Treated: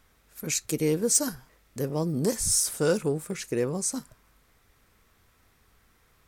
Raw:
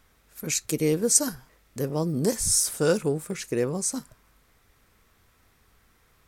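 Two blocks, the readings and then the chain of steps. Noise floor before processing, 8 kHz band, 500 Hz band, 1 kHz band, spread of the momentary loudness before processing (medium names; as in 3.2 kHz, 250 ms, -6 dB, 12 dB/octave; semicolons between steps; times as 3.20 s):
-63 dBFS, -2.0 dB, -1.5 dB, -1.5 dB, 12 LU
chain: saturation -11 dBFS, distortion -22 dB; trim -1 dB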